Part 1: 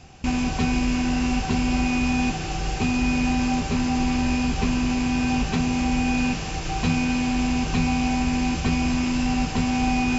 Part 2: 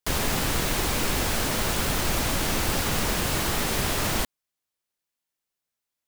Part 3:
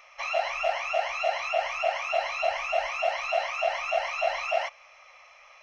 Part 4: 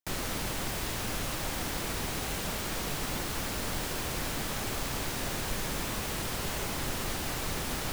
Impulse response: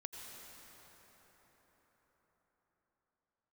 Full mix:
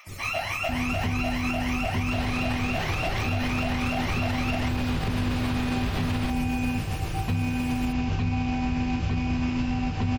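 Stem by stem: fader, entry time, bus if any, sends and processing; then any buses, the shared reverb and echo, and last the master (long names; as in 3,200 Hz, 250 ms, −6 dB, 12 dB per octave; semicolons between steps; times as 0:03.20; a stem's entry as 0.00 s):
−2.0 dB, 0.45 s, no send, low-pass filter 3,900 Hz 12 dB per octave
−2.0 dB, 2.05 s, no send, low-pass filter 4,400 Hz 24 dB per octave
−1.5 dB, 0.00 s, no send, tilt shelving filter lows −7 dB, about 650 Hz
−9.5 dB, 0.00 s, no send, high-shelf EQ 3,700 Hz +10.5 dB; spectral peaks only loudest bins 64; envelope flattener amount 50%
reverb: not used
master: parametric band 98 Hz +14 dB 0.59 octaves; amplitude tremolo 7.5 Hz, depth 36%; brickwall limiter −18 dBFS, peak gain reduction 10 dB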